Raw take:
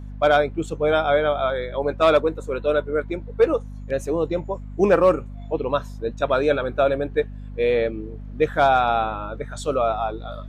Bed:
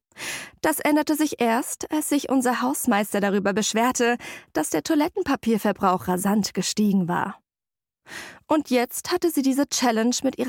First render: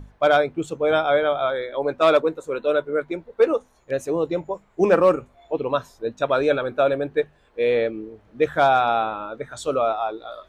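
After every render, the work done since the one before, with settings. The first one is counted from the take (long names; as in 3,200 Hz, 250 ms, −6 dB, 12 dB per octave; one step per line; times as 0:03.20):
mains-hum notches 50/100/150/200/250 Hz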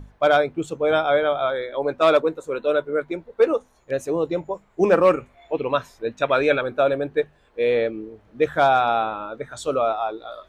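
0:05.05–0:06.61: parametric band 2,200 Hz +8.5 dB 0.89 octaves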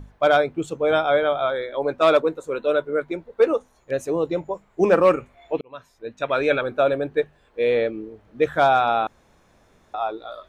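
0:05.61–0:06.62: fade in
0:09.07–0:09.94: fill with room tone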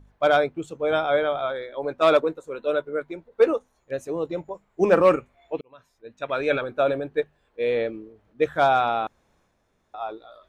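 transient designer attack 0 dB, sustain +5 dB
expander for the loud parts 1.5 to 1, over −37 dBFS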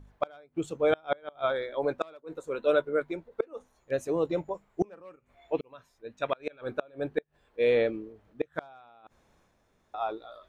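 gate with flip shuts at −14 dBFS, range −32 dB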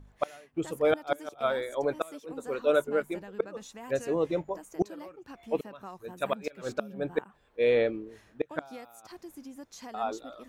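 mix in bed −24 dB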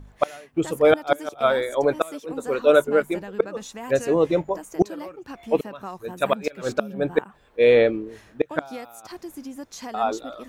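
level +8.5 dB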